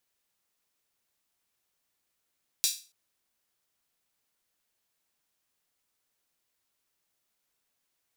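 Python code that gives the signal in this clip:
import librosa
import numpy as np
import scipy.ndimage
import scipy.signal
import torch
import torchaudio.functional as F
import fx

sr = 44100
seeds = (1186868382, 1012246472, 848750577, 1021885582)

y = fx.drum_hat_open(sr, length_s=0.28, from_hz=4300.0, decay_s=0.34)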